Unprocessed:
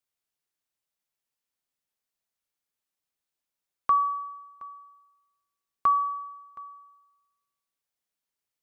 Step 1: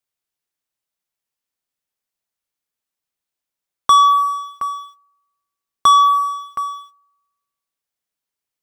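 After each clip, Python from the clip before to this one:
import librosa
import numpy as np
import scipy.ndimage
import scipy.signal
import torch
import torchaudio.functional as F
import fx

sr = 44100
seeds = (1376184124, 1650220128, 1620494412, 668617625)

y = fx.leveller(x, sr, passes=3)
y = F.gain(torch.from_numpy(y), 8.0).numpy()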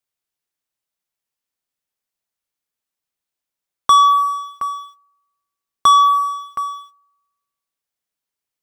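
y = x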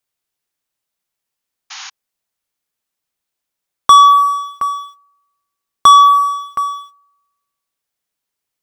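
y = fx.spec_paint(x, sr, seeds[0], shape='noise', start_s=1.7, length_s=0.2, low_hz=730.0, high_hz=6900.0, level_db=-36.0)
y = F.gain(torch.from_numpy(y), 5.0).numpy()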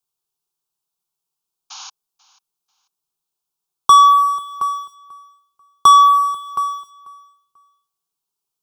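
y = fx.fixed_phaser(x, sr, hz=380.0, stages=8)
y = fx.echo_feedback(y, sr, ms=490, feedback_pct=24, wet_db=-21.0)
y = F.gain(torch.from_numpy(y), -1.0).numpy()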